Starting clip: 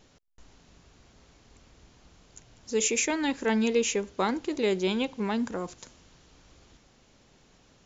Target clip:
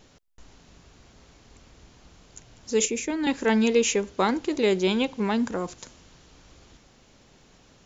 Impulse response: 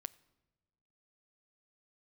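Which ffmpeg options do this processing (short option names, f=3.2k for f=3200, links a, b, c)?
-filter_complex "[0:a]asettb=1/sr,asplit=3[a][b][c];[a]atrim=end=2.854[d];[b]atrim=start=2.85:end=3.27,asetpts=PTS-STARTPTS,afade=t=in:d=0.004:c=qsin,afade=t=out:st=0.416:d=0.004:c=qsin,acrossover=split=400[e][f];[f]acompressor=threshold=-40dB:ratio=2.5[g];[e][g]amix=inputs=2:normalize=0[h];[c]atrim=start=3.266[i];[d][h]acrossfade=d=0.004:c1=hsin:c2=qsin[j];[j][i]acrossfade=d=0.004:c1=qsin:c2=hsin,volume=4dB"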